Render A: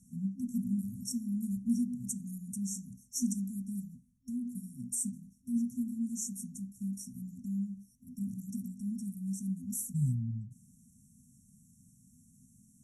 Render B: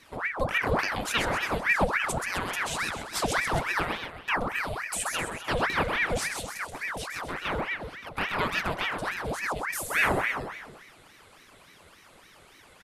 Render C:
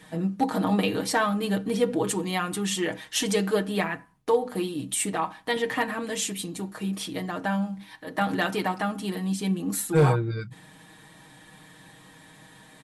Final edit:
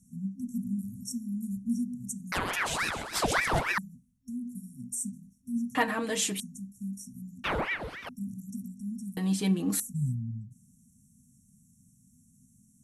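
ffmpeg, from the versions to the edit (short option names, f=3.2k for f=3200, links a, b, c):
-filter_complex "[1:a]asplit=2[a][b];[2:a]asplit=2[c][d];[0:a]asplit=5[e][f][g][h][i];[e]atrim=end=2.322[j];[a]atrim=start=2.318:end=3.782[k];[f]atrim=start=3.778:end=5.752[l];[c]atrim=start=5.748:end=6.402[m];[g]atrim=start=6.398:end=7.442[n];[b]atrim=start=7.438:end=8.092[o];[h]atrim=start=8.088:end=9.172[p];[d]atrim=start=9.168:end=9.802[q];[i]atrim=start=9.798[r];[j][k]acrossfade=d=0.004:c1=hsin:c2=hsin[s];[s][l]acrossfade=d=0.004:c1=hsin:c2=hsin[t];[t][m]acrossfade=d=0.004:c1=hsin:c2=hsin[u];[u][n]acrossfade=d=0.004:c1=hsin:c2=hsin[v];[v][o]acrossfade=d=0.004:c1=hsin:c2=hsin[w];[w][p]acrossfade=d=0.004:c1=hsin:c2=hsin[x];[x][q]acrossfade=d=0.004:c1=hsin:c2=hsin[y];[y][r]acrossfade=d=0.004:c1=hsin:c2=hsin"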